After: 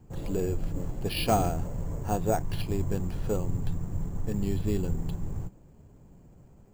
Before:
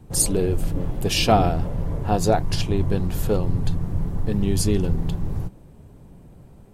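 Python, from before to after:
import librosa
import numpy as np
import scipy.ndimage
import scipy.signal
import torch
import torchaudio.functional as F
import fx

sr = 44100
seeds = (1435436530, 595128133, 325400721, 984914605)

y = np.repeat(scipy.signal.resample_poly(x, 1, 6), 6)[:len(x)]
y = fx.quant_float(y, sr, bits=6)
y = y * librosa.db_to_amplitude(-7.5)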